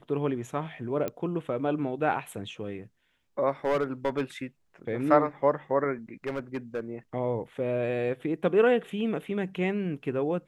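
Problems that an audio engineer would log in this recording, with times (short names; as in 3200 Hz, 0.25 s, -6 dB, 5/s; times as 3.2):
1.08 pop -18 dBFS
3.65–4.21 clipped -21.5 dBFS
6.27–6.8 clipped -26.5 dBFS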